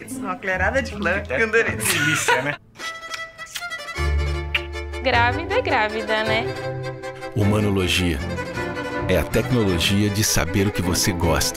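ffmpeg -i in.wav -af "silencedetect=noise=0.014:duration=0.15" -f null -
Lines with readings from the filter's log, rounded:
silence_start: 2.57
silence_end: 2.77 | silence_duration: 0.20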